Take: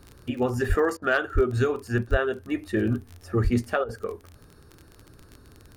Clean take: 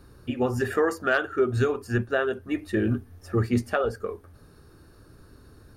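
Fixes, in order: de-click; de-plosive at 0.68/1.34/2.1/3.43; interpolate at 0.97/3.84, 49 ms

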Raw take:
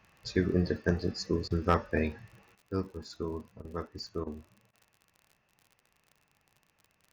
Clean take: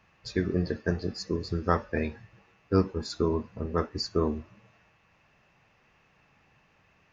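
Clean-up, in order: clip repair -13 dBFS; de-click; interpolate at 1.48/3.62/4.24/4.71, 24 ms; gain 0 dB, from 2.55 s +9.5 dB

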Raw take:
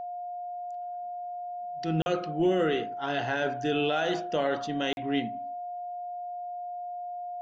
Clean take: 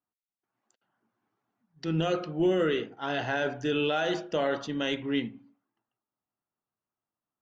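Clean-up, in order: notch 710 Hz, Q 30; interpolate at 2.02/4.93, 41 ms

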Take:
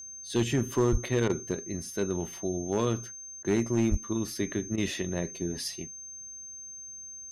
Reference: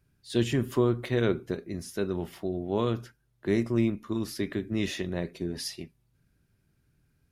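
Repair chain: clip repair -18.5 dBFS; notch 6300 Hz, Q 30; 0.91–1.03 HPF 140 Hz 24 dB/oct; 3.9–4.02 HPF 140 Hz 24 dB/oct; interpolate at 1.28/3.43/4.76, 15 ms

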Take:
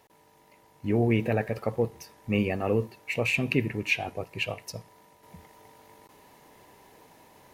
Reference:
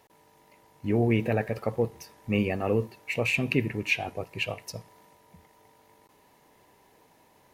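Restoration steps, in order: gain 0 dB, from 5.23 s -5.5 dB

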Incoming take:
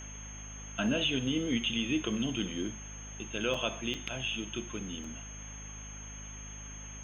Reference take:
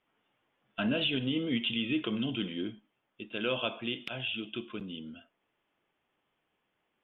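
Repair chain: de-hum 51.8 Hz, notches 5; notch 6400 Hz, Q 30; interpolate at 3.54/3.94/5.04, 4.1 ms; denoiser 30 dB, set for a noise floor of -45 dBFS

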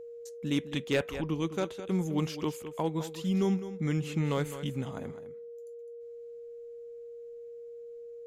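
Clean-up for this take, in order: clip repair -19.5 dBFS; notch 470 Hz, Q 30; inverse comb 0.208 s -12.5 dB

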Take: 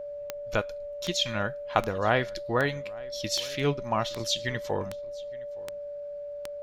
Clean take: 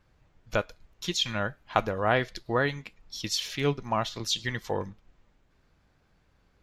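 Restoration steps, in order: de-click; notch 580 Hz, Q 30; inverse comb 0.867 s -23 dB

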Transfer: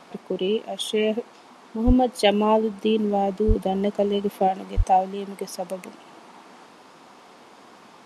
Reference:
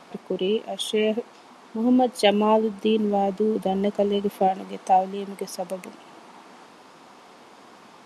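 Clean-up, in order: 1.86–1.98 HPF 140 Hz 24 dB/oct; 3.47–3.59 HPF 140 Hz 24 dB/oct; 4.76–4.88 HPF 140 Hz 24 dB/oct

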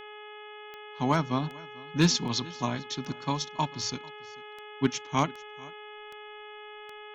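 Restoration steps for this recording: clip repair -13 dBFS; de-click; de-hum 421.4 Hz, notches 8; inverse comb 0.444 s -23 dB

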